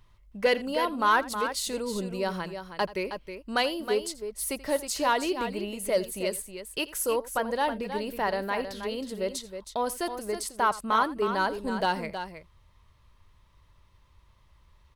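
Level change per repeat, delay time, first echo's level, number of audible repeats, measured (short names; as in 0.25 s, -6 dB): no steady repeat, 83 ms, -18.5 dB, 2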